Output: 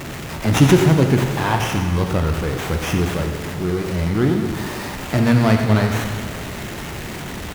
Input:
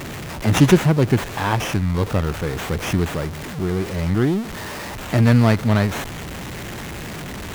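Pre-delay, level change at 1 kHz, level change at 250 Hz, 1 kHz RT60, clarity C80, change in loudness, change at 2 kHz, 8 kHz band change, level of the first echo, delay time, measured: 8 ms, +2.0 dB, +1.5 dB, 2.1 s, 5.5 dB, +1.0 dB, +1.5 dB, +1.5 dB, -11.0 dB, 90 ms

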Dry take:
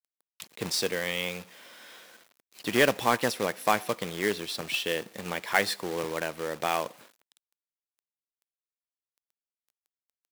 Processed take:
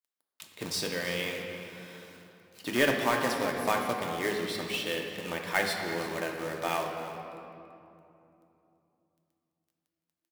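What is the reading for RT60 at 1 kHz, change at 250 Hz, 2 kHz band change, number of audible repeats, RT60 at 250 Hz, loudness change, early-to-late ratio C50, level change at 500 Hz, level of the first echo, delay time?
2.7 s, -0.5 dB, -1.5 dB, 1, 4.1 s, -2.0 dB, 3.0 dB, -2.0 dB, -15.0 dB, 0.336 s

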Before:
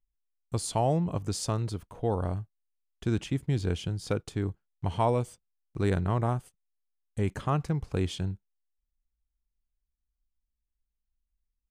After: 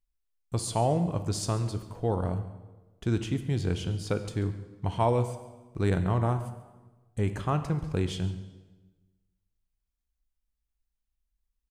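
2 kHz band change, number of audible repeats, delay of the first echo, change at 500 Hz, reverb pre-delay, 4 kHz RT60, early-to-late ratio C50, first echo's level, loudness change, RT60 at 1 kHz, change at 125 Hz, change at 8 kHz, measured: +0.5 dB, 1, 0.139 s, +0.5 dB, 11 ms, 1.0 s, 10.5 dB, -18.0 dB, +1.0 dB, 1.2 s, +1.0 dB, +0.5 dB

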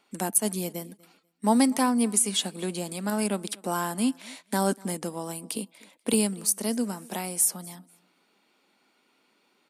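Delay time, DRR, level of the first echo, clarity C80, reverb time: 0.244 s, none, -24.0 dB, none, none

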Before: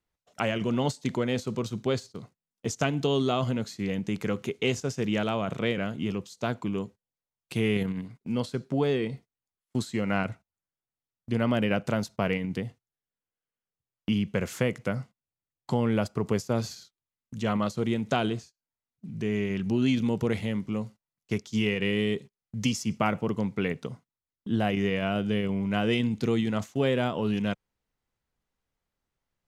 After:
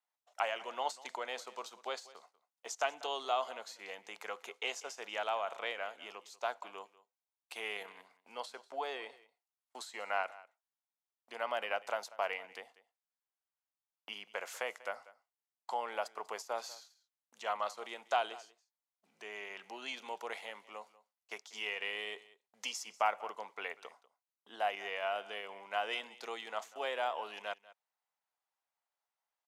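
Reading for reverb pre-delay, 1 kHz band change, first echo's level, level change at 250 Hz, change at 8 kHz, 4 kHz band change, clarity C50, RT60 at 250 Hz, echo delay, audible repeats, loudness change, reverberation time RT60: none, -2.0 dB, -19.5 dB, -32.5 dB, -7.0 dB, -6.5 dB, none, none, 0.192 s, 1, -10.5 dB, none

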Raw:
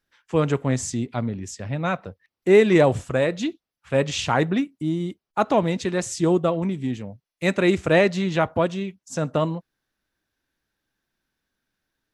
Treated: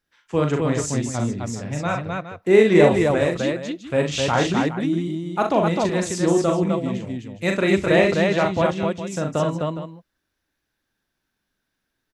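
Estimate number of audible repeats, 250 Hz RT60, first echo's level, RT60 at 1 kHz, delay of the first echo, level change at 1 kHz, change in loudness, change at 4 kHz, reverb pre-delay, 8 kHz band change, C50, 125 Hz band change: 3, none, -4.5 dB, none, 41 ms, +2.0 dB, +2.0 dB, +2.0 dB, none, +2.0 dB, none, +1.5 dB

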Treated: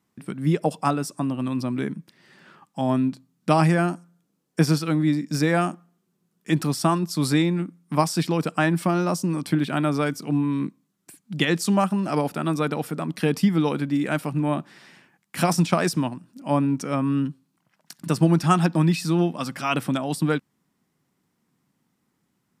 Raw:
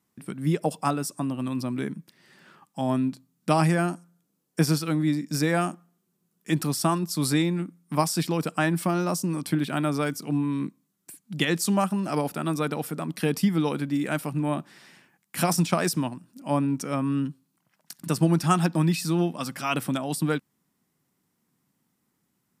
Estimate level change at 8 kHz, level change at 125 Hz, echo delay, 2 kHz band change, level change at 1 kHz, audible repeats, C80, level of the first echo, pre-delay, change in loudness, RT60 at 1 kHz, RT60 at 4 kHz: -1.5 dB, +3.0 dB, none, +2.5 dB, +3.0 dB, none, none, none, none, +2.5 dB, none, none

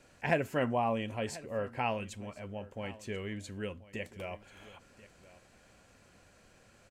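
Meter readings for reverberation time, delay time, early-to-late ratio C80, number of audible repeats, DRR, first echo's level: none, 1.036 s, none, 1, none, -18.5 dB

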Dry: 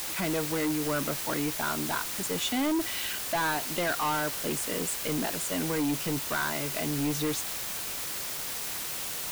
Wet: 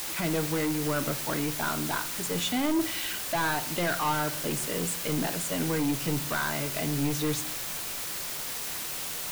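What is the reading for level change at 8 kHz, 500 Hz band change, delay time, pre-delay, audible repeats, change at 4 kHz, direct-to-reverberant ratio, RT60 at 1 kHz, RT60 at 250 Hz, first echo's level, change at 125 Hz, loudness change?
0.0 dB, +0.5 dB, none, 7 ms, none, +0.5 dB, 10.0 dB, 0.50 s, 0.80 s, none, +4.0 dB, +0.5 dB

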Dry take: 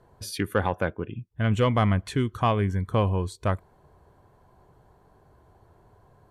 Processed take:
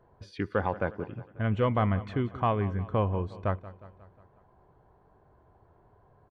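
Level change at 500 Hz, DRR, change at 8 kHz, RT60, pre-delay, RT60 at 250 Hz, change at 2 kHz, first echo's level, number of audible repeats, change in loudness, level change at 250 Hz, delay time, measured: -3.0 dB, none, under -20 dB, none, none, none, -5.0 dB, -17.0 dB, 4, -4.0 dB, -4.0 dB, 0.18 s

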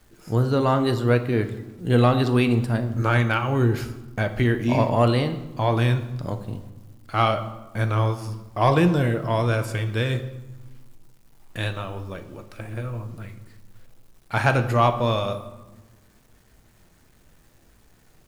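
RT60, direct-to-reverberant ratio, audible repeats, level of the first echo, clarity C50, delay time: 1.3 s, 8.0 dB, none, none, 12.0 dB, none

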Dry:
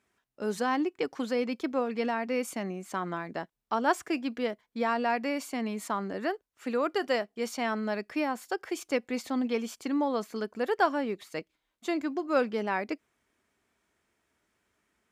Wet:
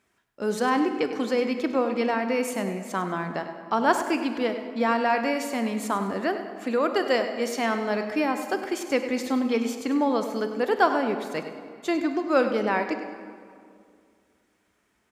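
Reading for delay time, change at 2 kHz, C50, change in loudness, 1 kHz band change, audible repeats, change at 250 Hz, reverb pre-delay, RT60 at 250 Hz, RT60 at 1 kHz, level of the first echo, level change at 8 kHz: 0.1 s, +5.5 dB, 7.0 dB, +5.5 dB, +5.5 dB, 2, +5.5 dB, 21 ms, 2.5 s, 2.2 s, -12.0 dB, +5.0 dB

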